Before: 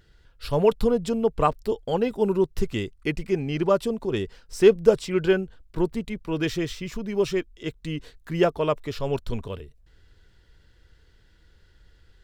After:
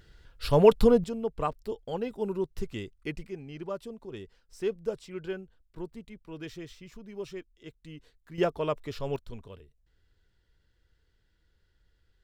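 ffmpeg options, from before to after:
-af "asetnsamples=n=441:p=0,asendcmd='1.04 volume volume -9dB;3.28 volume volume -15dB;8.38 volume volume -6dB;9.16 volume volume -13dB',volume=1.5dB"

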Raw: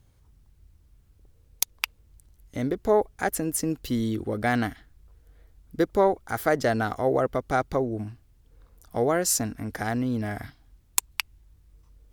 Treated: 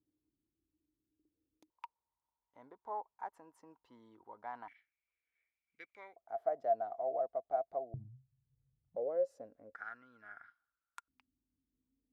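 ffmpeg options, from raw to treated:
-af "asetnsamples=n=441:p=0,asendcmd='1.7 bandpass f 940;4.68 bandpass f 2300;6.16 bandpass f 680;7.94 bandpass f 130;8.96 bandpass f 540;9.75 bandpass f 1400;11.08 bandpass f 260',bandpass=f=310:t=q:w=17:csg=0"

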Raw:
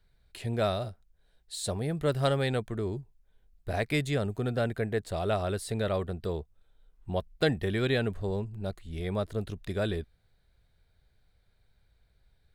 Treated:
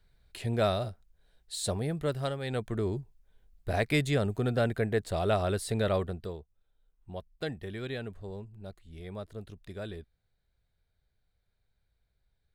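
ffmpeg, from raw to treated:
-af "volume=12dB,afade=t=out:st=1.7:d=0.7:silence=0.298538,afade=t=in:st=2.4:d=0.33:silence=0.281838,afade=t=out:st=5.96:d=0.42:silence=0.281838"

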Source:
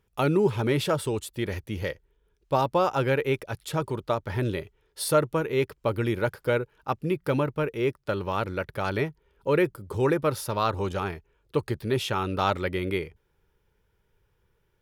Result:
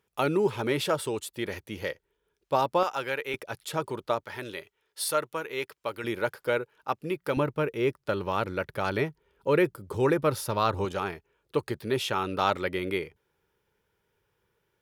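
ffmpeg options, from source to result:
-af "asetnsamples=n=441:p=0,asendcmd='2.83 highpass f 1200;3.34 highpass f 340;4.24 highpass f 1100;6.04 highpass f 420;7.37 highpass f 120;10.18 highpass f 56;10.85 highpass f 230',highpass=f=320:p=1"

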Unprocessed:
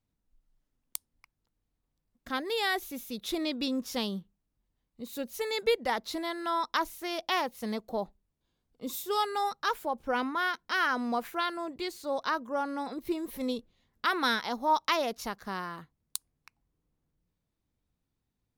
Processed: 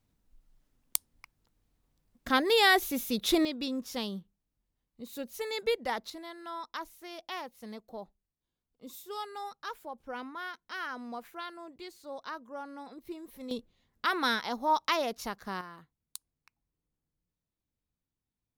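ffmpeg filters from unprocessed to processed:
-af "asetnsamples=n=441:p=0,asendcmd='3.45 volume volume -3dB;6.1 volume volume -10dB;13.51 volume volume -1dB;15.61 volume volume -8dB',volume=7dB"

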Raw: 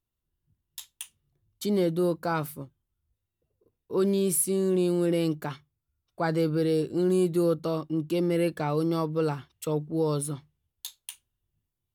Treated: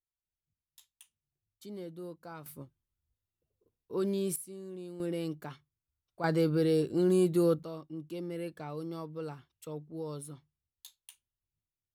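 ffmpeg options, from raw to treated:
-af "asetnsamples=n=441:p=0,asendcmd='2.46 volume volume -7dB;4.36 volume volume -19dB;5 volume volume -9.5dB;6.24 volume volume -2dB;7.63 volume volume -13dB',volume=-18dB"

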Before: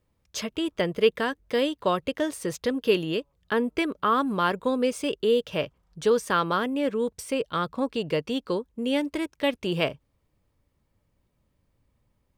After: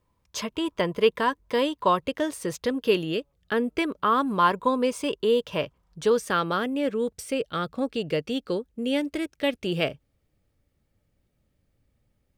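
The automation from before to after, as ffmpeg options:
-af "asetnsamples=n=441:p=0,asendcmd='2.06 equalizer g 2.5;3.02 equalizer g -9;3.78 equalizer g 3;4.39 equalizer g 11;5.58 equalizer g 3.5;6.16 equalizer g -7;7.23 equalizer g -13.5',equalizer=f=1k:t=o:w=0.22:g=12.5"

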